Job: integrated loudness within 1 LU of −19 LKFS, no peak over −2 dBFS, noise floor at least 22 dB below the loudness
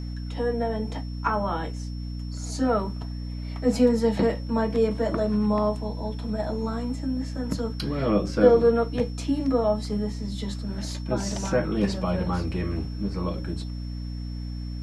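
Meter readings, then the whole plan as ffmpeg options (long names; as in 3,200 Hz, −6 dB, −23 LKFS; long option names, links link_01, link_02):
mains hum 60 Hz; hum harmonics up to 300 Hz; level of the hum −30 dBFS; interfering tone 5,400 Hz; level of the tone −49 dBFS; integrated loudness −26.5 LKFS; sample peak −5.5 dBFS; target loudness −19.0 LKFS
→ -af "bandreject=frequency=60:width_type=h:width=4,bandreject=frequency=120:width_type=h:width=4,bandreject=frequency=180:width_type=h:width=4,bandreject=frequency=240:width_type=h:width=4,bandreject=frequency=300:width_type=h:width=4"
-af "bandreject=frequency=5400:width=30"
-af "volume=7.5dB,alimiter=limit=-2dB:level=0:latency=1"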